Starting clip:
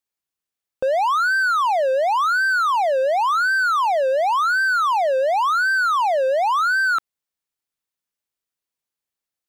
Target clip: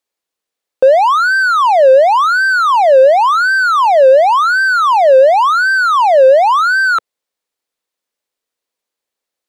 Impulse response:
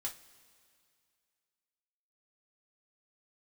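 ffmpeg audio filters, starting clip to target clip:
-af "equalizer=f=125:t=o:w=1:g=-6,equalizer=f=250:t=o:w=1:g=4,equalizer=f=500:t=o:w=1:g=11,equalizer=f=1k:t=o:w=1:g=4,equalizer=f=2k:t=o:w=1:g=4,equalizer=f=4k:t=o:w=1:g=5,equalizer=f=8k:t=o:w=1:g=3,volume=1.5dB"

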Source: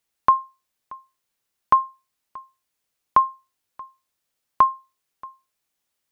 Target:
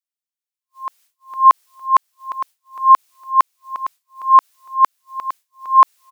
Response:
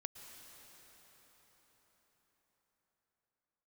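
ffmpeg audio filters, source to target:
-filter_complex "[0:a]areverse,highpass=f=620:p=1,agate=range=-33dB:threshold=-58dB:ratio=3:detection=peak,highshelf=f=2.1k:g=8.5,asplit=2[a][b];[b]aecho=0:1:458|916|1374:0.398|0.0995|0.0249[c];[a][c]amix=inputs=2:normalize=0,alimiter=level_in=12dB:limit=-1dB:release=50:level=0:latency=1,volume=-1dB"

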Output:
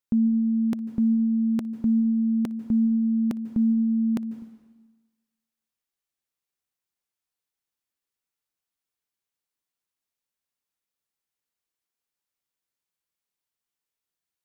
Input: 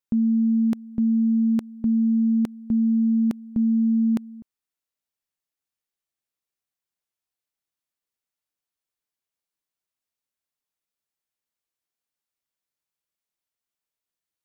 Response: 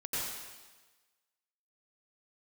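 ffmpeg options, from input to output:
-filter_complex "[0:a]bandreject=f=630:w=12,asplit=2[a][b];[1:a]atrim=start_sample=2205,adelay=59[c];[b][c]afir=irnorm=-1:irlink=0,volume=-18dB[d];[a][d]amix=inputs=2:normalize=0"

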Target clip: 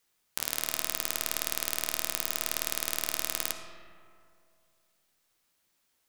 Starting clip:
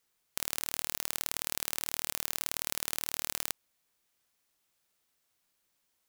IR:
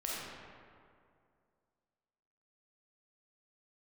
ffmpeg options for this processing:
-filter_complex "[0:a]bandreject=f=45.52:t=h:w=4,bandreject=f=91.04:t=h:w=4,bandreject=f=136.56:t=h:w=4,bandreject=f=182.08:t=h:w=4,bandreject=f=227.6:t=h:w=4,bandreject=f=273.12:t=h:w=4,bandreject=f=318.64:t=h:w=4,bandreject=f=364.16:t=h:w=4,bandreject=f=409.68:t=h:w=4,bandreject=f=455.2:t=h:w=4,bandreject=f=500.72:t=h:w=4,bandreject=f=546.24:t=h:w=4,bandreject=f=591.76:t=h:w=4,bandreject=f=637.28:t=h:w=4,bandreject=f=682.8:t=h:w=4,bandreject=f=728.32:t=h:w=4,bandreject=f=773.84:t=h:w=4,bandreject=f=819.36:t=h:w=4,bandreject=f=864.88:t=h:w=4,bandreject=f=910.4:t=h:w=4,bandreject=f=955.92:t=h:w=4,bandreject=f=1.00144k:t=h:w=4,bandreject=f=1.04696k:t=h:w=4,bandreject=f=1.09248k:t=h:w=4,bandreject=f=1.138k:t=h:w=4,bandreject=f=1.18352k:t=h:w=4,bandreject=f=1.22904k:t=h:w=4,bandreject=f=1.27456k:t=h:w=4,bandreject=f=1.32008k:t=h:w=4,bandreject=f=1.3656k:t=h:w=4,bandreject=f=1.41112k:t=h:w=4,bandreject=f=1.45664k:t=h:w=4,bandreject=f=1.50216k:t=h:w=4,bandreject=f=1.54768k:t=h:w=4,asplit=2[a][b];[1:a]atrim=start_sample=2205,lowpass=7.8k,adelay=12[c];[b][c]afir=irnorm=-1:irlink=0,volume=-7.5dB[d];[a][d]amix=inputs=2:normalize=0,volume=2.5dB"

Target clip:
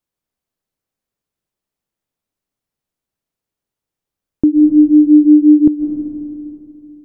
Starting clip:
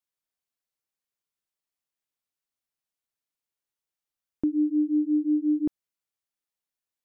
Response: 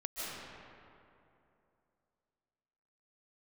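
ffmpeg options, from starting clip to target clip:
-filter_complex "[0:a]tiltshelf=f=690:g=6.5,asplit=2[a][b];[1:a]atrim=start_sample=2205[c];[b][c]afir=irnorm=-1:irlink=0,volume=-7dB[d];[a][d]amix=inputs=2:normalize=0,volume=7.5dB"

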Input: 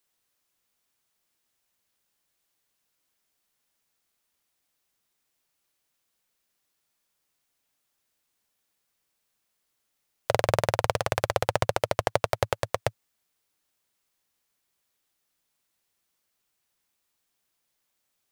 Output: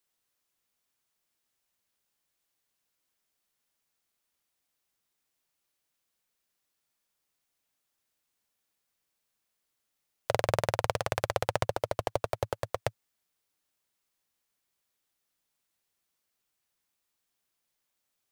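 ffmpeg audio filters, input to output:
-filter_complex "[0:a]asettb=1/sr,asplit=3[a][b][c];[a]atrim=end=11.634[d];[b]atrim=start=11.63:end=12.8,asetpts=PTS-STARTPTS,afade=t=in:d=0.004:c=qsin,afade=t=out:st=1.166:d=0.004:c=qsin,aeval=exprs='clip(val(0),-1,0.224)':c=same[e];[c]atrim=start=12.796[f];[d][e]acrossfade=d=0.004:c1=hsin:c2=qsin[g];[g][f]acrossfade=d=0.004:c1=qsin:c2=hsin,volume=-4dB"

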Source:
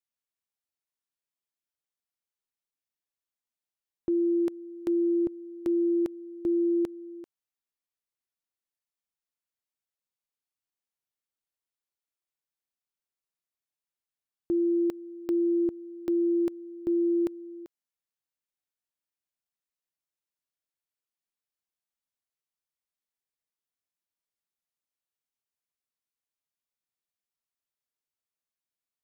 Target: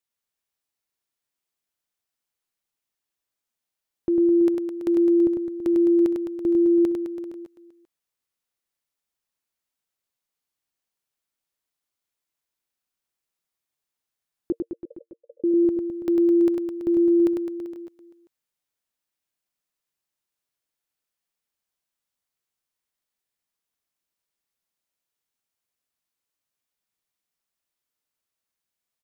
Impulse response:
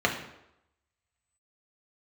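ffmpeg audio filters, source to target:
-filter_complex "[0:a]asettb=1/sr,asplit=3[a][b][c];[a]atrim=end=14.524[d];[b]atrim=start=14.52:end=15.44,asetpts=PTS-STARTPTS,afade=t=in:d=0.004:c=qsin,afade=t=out:st=0.916:d=0.004:c=qsin,asuperpass=centerf=520:order=12:qfactor=4[e];[c]atrim=start=15.436[f];[d][e]acrossfade=d=0.004:c1=hsin:c2=qsin[g];[g][f]acrossfade=d=0.004:c1=qsin:c2=hsin,aecho=1:1:100|210|331|464.1|610.5:0.631|0.398|0.251|0.158|0.1,volume=4.5dB"

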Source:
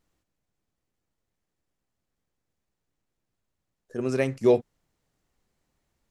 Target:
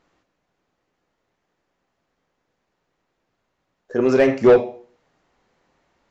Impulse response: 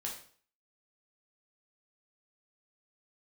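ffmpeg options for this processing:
-filter_complex "[0:a]aresample=16000,aresample=44100,asplit=2[a][b];[1:a]atrim=start_sample=2205,asetrate=48510,aresample=44100[c];[b][c]afir=irnorm=-1:irlink=0,volume=-3.5dB[d];[a][d]amix=inputs=2:normalize=0,asplit=2[e][f];[f]highpass=f=720:p=1,volume=20dB,asoftclip=type=tanh:threshold=-5.5dB[g];[e][g]amix=inputs=2:normalize=0,lowpass=f=1.2k:p=1,volume=-6dB,volume=2dB"

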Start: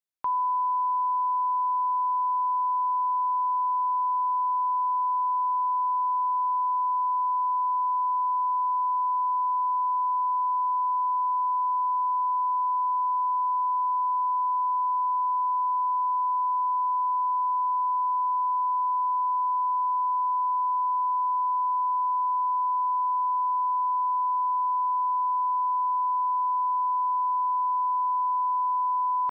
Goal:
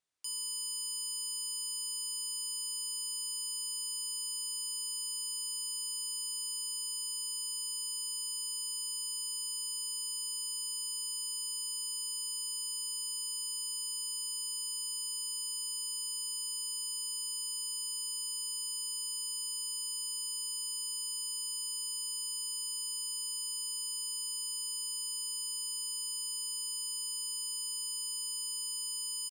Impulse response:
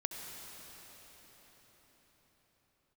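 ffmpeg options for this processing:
-af "aresample=22050,aresample=44100,acontrast=58,aeval=exprs='0.0237*(abs(mod(val(0)/0.0237+3,4)-2)-1)':c=same"

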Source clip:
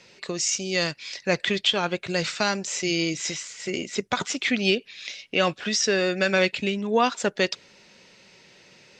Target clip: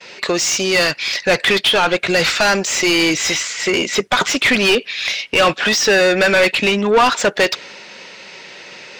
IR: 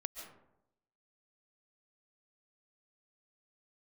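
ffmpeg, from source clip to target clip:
-filter_complex "[0:a]agate=range=-33dB:threshold=-51dB:ratio=3:detection=peak,asplit=2[a][b];[b]highpass=f=720:p=1,volume=25dB,asoftclip=type=tanh:threshold=-6.5dB[c];[a][c]amix=inputs=2:normalize=0,lowpass=f=2.9k:p=1,volume=-6dB,volume=2.5dB"

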